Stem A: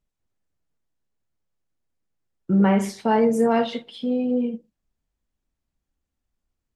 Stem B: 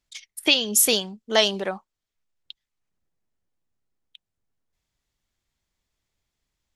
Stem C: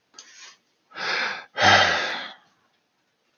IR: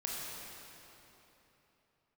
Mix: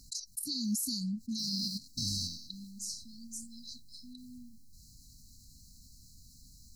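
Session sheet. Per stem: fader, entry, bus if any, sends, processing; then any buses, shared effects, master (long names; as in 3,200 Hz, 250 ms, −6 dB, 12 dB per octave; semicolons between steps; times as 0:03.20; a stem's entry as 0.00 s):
−10.0 dB, 0.00 s, no send, high-pass filter 640 Hz 12 dB per octave; parametric band 6,000 Hz +11.5 dB 1.7 octaves
−7.5 dB, 0.00 s, no send, hollow resonant body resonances 770/2,100 Hz, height 11 dB; envelope flattener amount 50%
−3.5 dB, 0.40 s, no send, spectrum averaged block by block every 100 ms; leveller curve on the samples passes 2; automatic ducking −20 dB, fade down 0.40 s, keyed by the first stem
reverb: not used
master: linear-phase brick-wall band-stop 290–3,900 Hz; brickwall limiter −25 dBFS, peak gain reduction 13 dB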